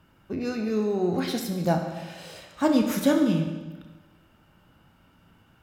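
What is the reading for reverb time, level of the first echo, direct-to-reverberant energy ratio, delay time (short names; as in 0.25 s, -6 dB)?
1.3 s, none, 3.0 dB, none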